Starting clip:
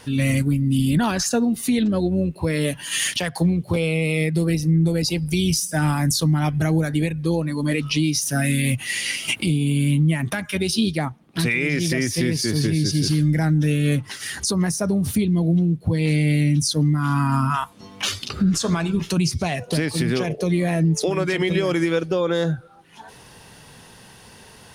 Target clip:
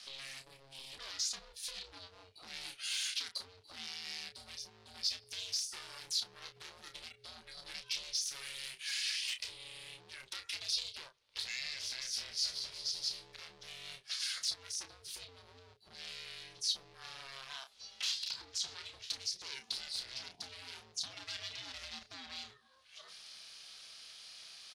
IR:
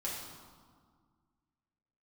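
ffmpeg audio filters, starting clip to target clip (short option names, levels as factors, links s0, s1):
-filter_complex "[0:a]acompressor=threshold=0.0398:ratio=4,aeval=exprs='0.0501*(abs(mod(val(0)/0.0501+3,4)-2)-1)':c=same,bandpass=f=4400:t=q:w=2.5:csg=0,aeval=exprs='val(0)*sin(2*PI*270*n/s)':c=same,asplit=2[s0][s1];[s1]adelay=31,volume=0.398[s2];[s0][s2]amix=inputs=2:normalize=0,volume=1.78"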